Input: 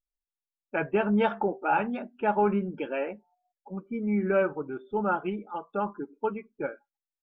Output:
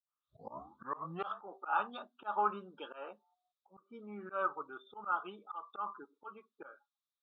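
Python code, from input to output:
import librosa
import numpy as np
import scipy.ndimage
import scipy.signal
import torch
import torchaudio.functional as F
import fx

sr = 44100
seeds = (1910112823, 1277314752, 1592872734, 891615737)

y = fx.tape_start_head(x, sr, length_s=1.39)
y = fx.double_bandpass(y, sr, hz=2100.0, octaves=1.6)
y = fx.auto_swell(y, sr, attack_ms=150.0)
y = y * 10.0 ** (9.0 / 20.0)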